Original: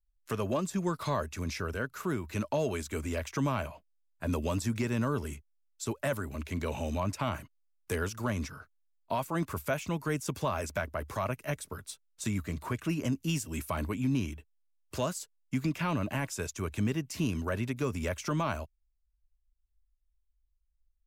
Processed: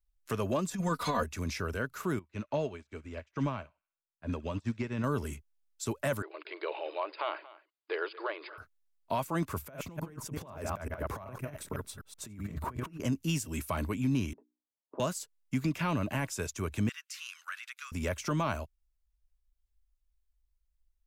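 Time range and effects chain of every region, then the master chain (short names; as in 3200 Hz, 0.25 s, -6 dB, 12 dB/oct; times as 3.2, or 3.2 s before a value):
0.71–1.24 comb 4.1 ms, depth 99% + negative-ratio compressor -29 dBFS, ratio -0.5
2.19–5.04 LPF 4300 Hz + thin delay 65 ms, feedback 56%, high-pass 1400 Hz, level -13 dB + upward expander 2.5:1, over -47 dBFS
6.22–8.58 brick-wall FIR band-pass 310–5000 Hz + echo 0.231 s -19 dB
9.62–13 reverse delay 0.126 s, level -6 dB + bell 6100 Hz -9.5 dB 3 oct + negative-ratio compressor -38 dBFS, ratio -0.5
14.33–15 Chebyshev band-pass 240–990 Hz, order 3 + notches 60/120/180/240/300/360 Hz
16.89–17.92 Chebyshev high-pass 1300 Hz, order 4 + high shelf 10000 Hz -7.5 dB
whole clip: dry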